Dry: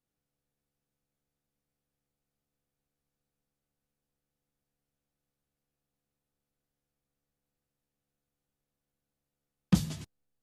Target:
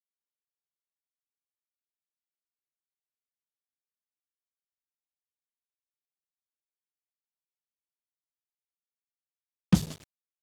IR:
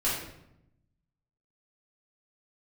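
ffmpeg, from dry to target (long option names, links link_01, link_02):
-af "aeval=exprs='sgn(val(0))*max(abs(val(0))-0.00944,0)':channel_layout=same,volume=3.5dB"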